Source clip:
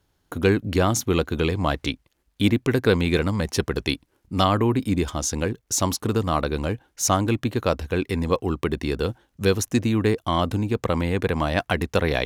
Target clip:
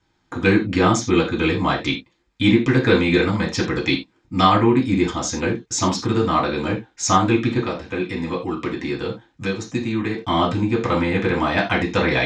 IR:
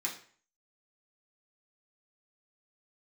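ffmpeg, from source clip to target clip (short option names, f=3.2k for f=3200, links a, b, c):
-filter_complex "[0:a]asettb=1/sr,asplit=3[a][b][c];[a]atrim=end=7.584[d];[b]atrim=start=7.58:end=10.24,asetpts=PTS-STARTPTS,afade=t=in:d=0.004:c=qsin,afade=t=out:st=2.656:d=0.004:c=qsin,acrossover=split=110|870[e][f][g];[e]acompressor=threshold=-41dB:ratio=4[h];[f]acompressor=threshold=-26dB:ratio=4[i];[g]acompressor=threshold=-35dB:ratio=4[j];[h][i][j]amix=inputs=3:normalize=0[k];[c]atrim=start=10.236[l];[d][k]acrossfade=d=0.004:c1=hsin:c2=qsin[m];[m][l]acrossfade=d=0.004:c1=qsin:c2=hsin,lowpass=f=5.9k:w=0.5412,lowpass=f=5.9k:w=1.3066[n];[1:a]atrim=start_sample=2205,atrim=end_sample=4410[o];[n][o]afir=irnorm=-1:irlink=0,volume=3dB"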